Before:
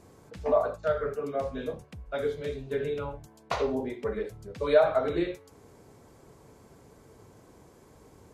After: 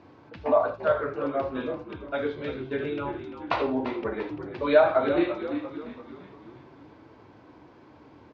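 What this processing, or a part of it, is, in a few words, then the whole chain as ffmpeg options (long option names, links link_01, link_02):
frequency-shifting delay pedal into a guitar cabinet: -filter_complex "[0:a]lowpass=5300,asplit=7[link_01][link_02][link_03][link_04][link_05][link_06][link_07];[link_02]adelay=343,afreqshift=-54,volume=-10.5dB[link_08];[link_03]adelay=686,afreqshift=-108,volume=-16.3dB[link_09];[link_04]adelay=1029,afreqshift=-162,volume=-22.2dB[link_10];[link_05]adelay=1372,afreqshift=-216,volume=-28dB[link_11];[link_06]adelay=1715,afreqshift=-270,volume=-33.9dB[link_12];[link_07]adelay=2058,afreqshift=-324,volume=-39.7dB[link_13];[link_01][link_08][link_09][link_10][link_11][link_12][link_13]amix=inputs=7:normalize=0,highpass=99,equalizer=frequency=180:width_type=q:width=4:gain=-7,equalizer=frequency=300:width_type=q:width=4:gain=7,equalizer=frequency=430:width_type=q:width=4:gain=-5,equalizer=frequency=930:width_type=q:width=4:gain=4,equalizer=frequency=1500:width_type=q:width=4:gain=3,equalizer=frequency=2600:width_type=q:width=4:gain=4,lowpass=frequency=4600:width=0.5412,lowpass=frequency=4600:width=1.3066,volume=2.5dB"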